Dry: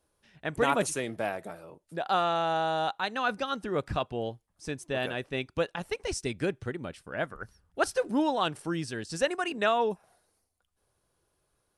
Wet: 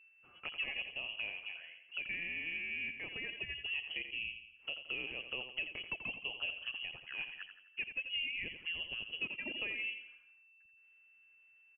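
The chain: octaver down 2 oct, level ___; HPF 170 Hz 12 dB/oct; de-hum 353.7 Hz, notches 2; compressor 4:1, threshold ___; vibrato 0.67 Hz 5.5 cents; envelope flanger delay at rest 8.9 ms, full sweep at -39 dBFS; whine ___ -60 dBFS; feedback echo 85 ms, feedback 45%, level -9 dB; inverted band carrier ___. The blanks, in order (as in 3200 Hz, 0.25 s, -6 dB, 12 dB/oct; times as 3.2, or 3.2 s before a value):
-6 dB, -37 dBFS, 430 Hz, 3100 Hz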